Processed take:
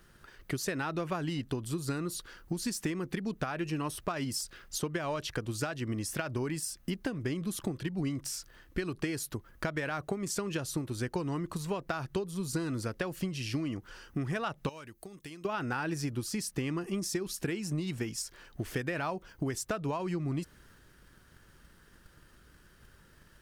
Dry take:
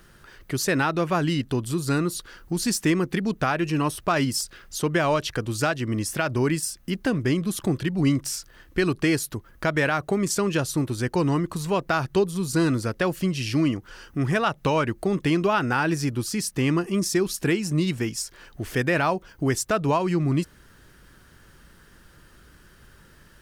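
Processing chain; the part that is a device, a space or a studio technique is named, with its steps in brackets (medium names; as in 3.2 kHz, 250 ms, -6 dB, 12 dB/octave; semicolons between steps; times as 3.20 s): drum-bus smash (transient shaper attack +7 dB, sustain +3 dB; compression, threshold -21 dBFS, peak gain reduction 9.5 dB; saturation -11.5 dBFS, distortion -26 dB); 14.69–15.45 s: pre-emphasis filter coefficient 0.8; trim -8 dB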